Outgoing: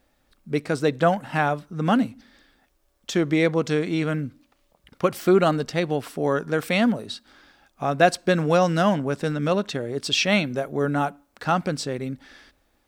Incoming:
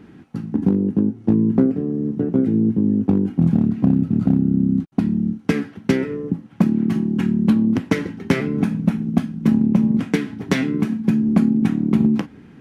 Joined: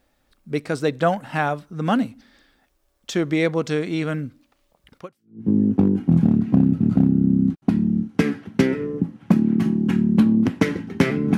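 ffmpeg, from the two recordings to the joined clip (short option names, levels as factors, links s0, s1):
-filter_complex "[0:a]apad=whole_dur=11.37,atrim=end=11.37,atrim=end=5.49,asetpts=PTS-STARTPTS[s0];[1:a]atrim=start=2.27:end=8.67,asetpts=PTS-STARTPTS[s1];[s0][s1]acrossfade=d=0.52:c1=exp:c2=exp"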